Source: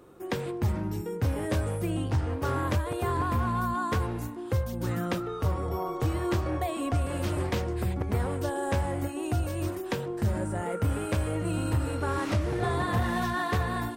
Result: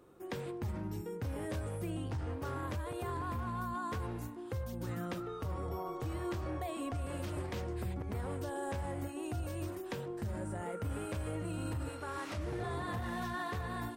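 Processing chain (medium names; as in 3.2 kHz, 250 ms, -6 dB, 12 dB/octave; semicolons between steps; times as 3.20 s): 11.89–12.38 s: bass shelf 400 Hz -9.5 dB; peak limiter -22.5 dBFS, peak gain reduction 6.5 dB; trim -7.5 dB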